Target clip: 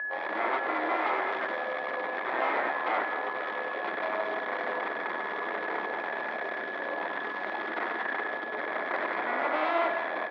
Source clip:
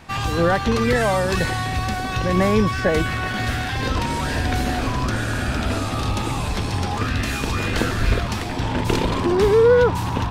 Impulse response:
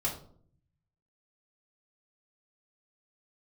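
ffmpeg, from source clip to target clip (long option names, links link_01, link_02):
-filter_complex "[0:a]equalizer=frequency=610:width_type=o:width=0.32:gain=9,aecho=1:1:6.5:0.54,acrossover=split=540[link_01][link_02];[link_01]acontrast=82[link_03];[link_03][link_02]amix=inputs=2:normalize=0,asetrate=30296,aresample=44100,atempo=1.45565,aeval=exprs='max(val(0),0)':channel_layout=same,aeval=exprs='val(0)+0.1*sin(2*PI*1700*n/s)':channel_layout=same,aeval=exprs='0.211*(abs(mod(val(0)/0.211+3,4)-2)-1)':channel_layout=same,highpass=frequency=340:width=0.5412,highpass=frequency=340:width=1.3066,equalizer=frequency=440:width_type=q:width=4:gain=-4,equalizer=frequency=690:width_type=q:width=4:gain=5,equalizer=frequency=1000:width_type=q:width=4:gain=4,equalizer=frequency=1600:width_type=q:width=4:gain=-5,equalizer=frequency=2800:width_type=q:width=4:gain=-10,lowpass=frequency=2900:width=0.5412,lowpass=frequency=2900:width=1.3066,aecho=1:1:99.13|166.2|212.8:0.282|0.251|0.251,volume=-6.5dB"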